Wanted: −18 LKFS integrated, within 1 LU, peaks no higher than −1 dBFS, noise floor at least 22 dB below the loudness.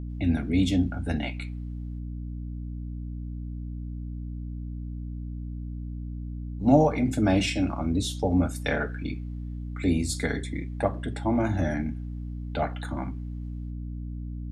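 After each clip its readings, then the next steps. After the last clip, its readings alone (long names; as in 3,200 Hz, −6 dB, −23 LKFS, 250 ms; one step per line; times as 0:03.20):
mains hum 60 Hz; hum harmonics up to 300 Hz; level of the hum −32 dBFS; integrated loudness −29.5 LKFS; sample peak −7.5 dBFS; target loudness −18.0 LKFS
→ hum removal 60 Hz, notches 5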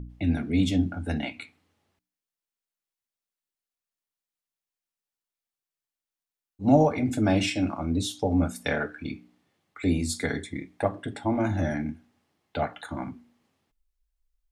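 mains hum none found; integrated loudness −27.5 LKFS; sample peak −8.5 dBFS; target loudness −18.0 LKFS
→ level +9.5 dB
brickwall limiter −1 dBFS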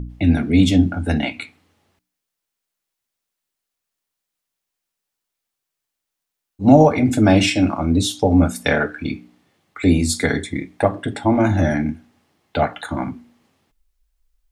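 integrated loudness −18.0 LKFS; sample peak −1.0 dBFS; background noise floor −82 dBFS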